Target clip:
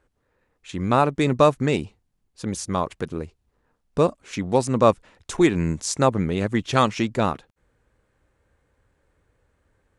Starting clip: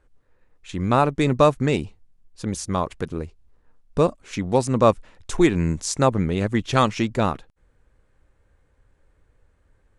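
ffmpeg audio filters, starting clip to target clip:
ffmpeg -i in.wav -af "highpass=frequency=92:poles=1" out.wav

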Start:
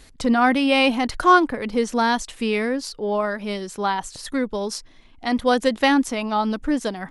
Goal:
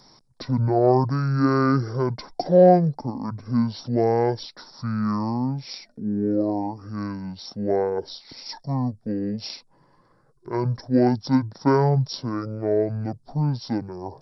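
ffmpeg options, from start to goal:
ffmpeg -i in.wav -filter_complex "[0:a]acrossover=split=240 2400:gain=0.158 1 0.126[link_01][link_02][link_03];[link_01][link_02][link_03]amix=inputs=3:normalize=0,asetrate=22050,aresample=44100,aexciter=amount=15.3:drive=6.6:freq=4300" out.wav

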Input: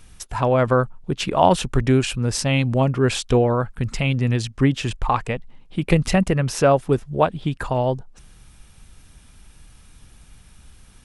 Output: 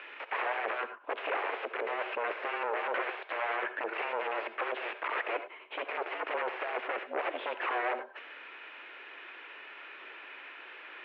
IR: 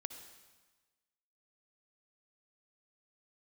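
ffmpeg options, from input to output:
-filter_complex "[0:a]tiltshelf=frequency=1300:gain=-8,aeval=exprs='(tanh(28.2*val(0)+0.5)-tanh(0.5))/28.2':channel_layout=same,aeval=exprs='0.0531*sin(PI/2*3.98*val(0)/0.0531)':channel_layout=same[link_01];[1:a]atrim=start_sample=2205,afade=type=out:start_time=0.16:duration=0.01,atrim=end_sample=7497[link_02];[link_01][link_02]afir=irnorm=-1:irlink=0,highpass=frequency=290:width_type=q:width=0.5412,highpass=frequency=290:width_type=q:width=1.307,lowpass=frequency=2400:width_type=q:width=0.5176,lowpass=frequency=2400:width_type=q:width=0.7071,lowpass=frequency=2400:width_type=q:width=1.932,afreqshift=110,volume=3dB"

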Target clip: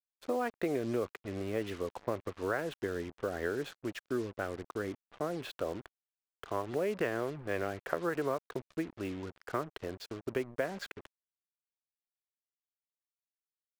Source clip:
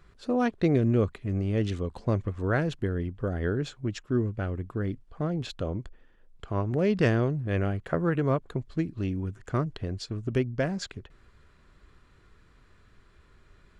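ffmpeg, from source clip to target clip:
ffmpeg -i in.wav -filter_complex "[0:a]acrossover=split=340 2900:gain=0.126 1 0.178[link_01][link_02][link_03];[link_01][link_02][link_03]amix=inputs=3:normalize=0,acompressor=threshold=-30dB:ratio=6,acrusher=bits=7:mix=0:aa=0.5,volume=1.5dB" out.wav

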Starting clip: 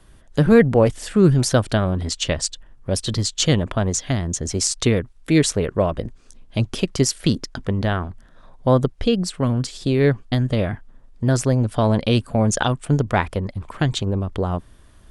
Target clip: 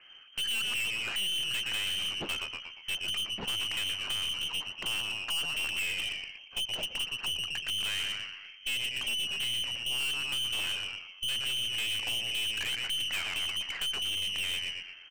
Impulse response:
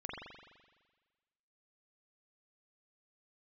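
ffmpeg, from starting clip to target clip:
-filter_complex "[0:a]asplit=5[link_01][link_02][link_03][link_04][link_05];[link_02]adelay=118,afreqshift=99,volume=-12dB[link_06];[link_03]adelay=236,afreqshift=198,volume=-19.3dB[link_07];[link_04]adelay=354,afreqshift=297,volume=-26.7dB[link_08];[link_05]adelay=472,afreqshift=396,volume=-34dB[link_09];[link_01][link_06][link_07][link_08][link_09]amix=inputs=5:normalize=0,acompressor=threshold=-22dB:ratio=4,highpass=frequency=110:poles=1,asplit=2[link_10][link_11];[1:a]atrim=start_sample=2205,lowpass=1400[link_12];[link_11][link_12]afir=irnorm=-1:irlink=0,volume=-21.5dB[link_13];[link_10][link_13]amix=inputs=2:normalize=0,lowpass=frequency=2700:width_type=q:width=0.5098,lowpass=frequency=2700:width_type=q:width=0.6013,lowpass=frequency=2700:width_type=q:width=0.9,lowpass=frequency=2700:width_type=q:width=2.563,afreqshift=-3200,aeval=exprs='(tanh(39.8*val(0)+0.35)-tanh(0.35))/39.8':channel_layout=same,volume=2dB"

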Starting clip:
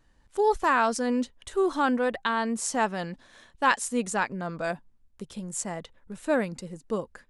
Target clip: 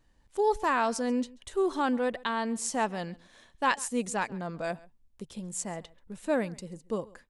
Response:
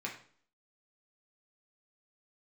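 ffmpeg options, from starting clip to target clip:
-af "equalizer=frequency=1400:width=2.4:gain=-4,aecho=1:1:135:0.075,volume=-2.5dB"

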